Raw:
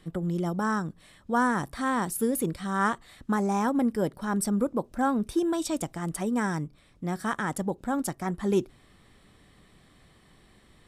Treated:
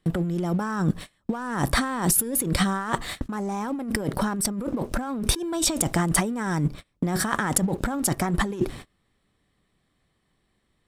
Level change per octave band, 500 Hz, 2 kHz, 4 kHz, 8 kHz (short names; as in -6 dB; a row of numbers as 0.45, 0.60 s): -0.5, +3.0, +12.0, +11.5 dB